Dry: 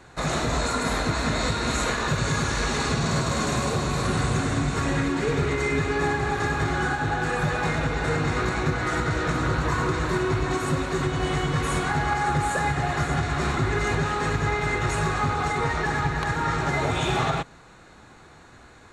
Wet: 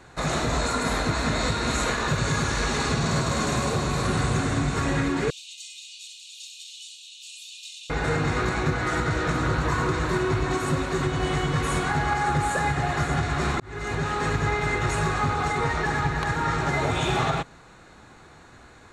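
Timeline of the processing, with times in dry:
0:05.30–0:07.90: Butterworth high-pass 2,700 Hz 96 dB per octave
0:13.60–0:14.35: fade in equal-power

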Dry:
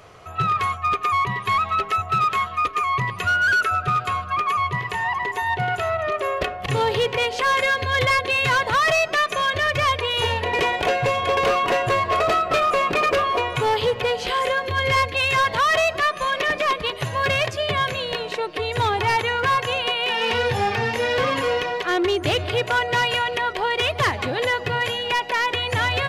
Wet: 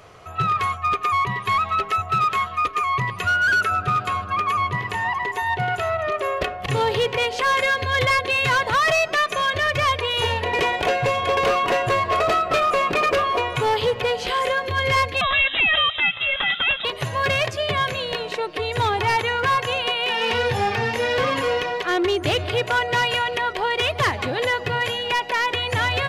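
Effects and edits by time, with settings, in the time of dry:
0:03.47–0:05.10: hum with harmonics 100 Hz, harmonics 17, −40 dBFS −5 dB per octave
0:15.21–0:16.85: voice inversion scrambler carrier 3,800 Hz

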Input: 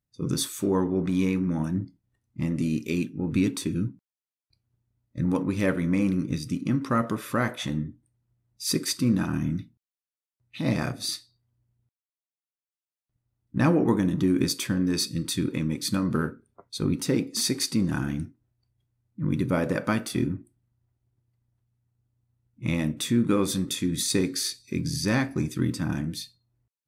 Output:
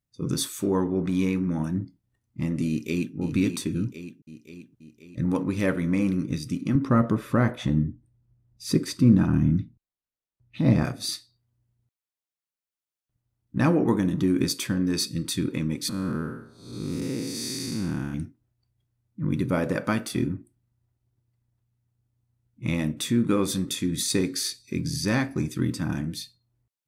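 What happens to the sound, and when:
0:02.68–0:03.15: delay throw 530 ms, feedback 60%, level −8 dB
0:06.75–0:10.85: spectral tilt −2.5 dB per octave
0:15.89–0:18.14: spectrum smeared in time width 277 ms

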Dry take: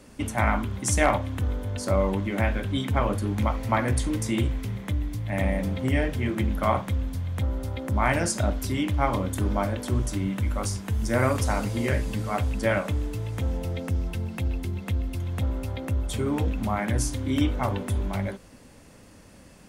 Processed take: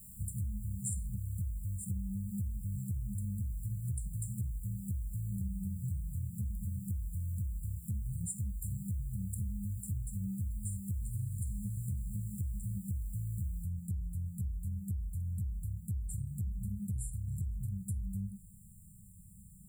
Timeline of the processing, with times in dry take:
0:13.63: noise floor change −50 dB −63 dB
whole clip: brick-wall band-stop 210–7,100 Hz; downward compressor, threshold −32 dBFS; level −2 dB

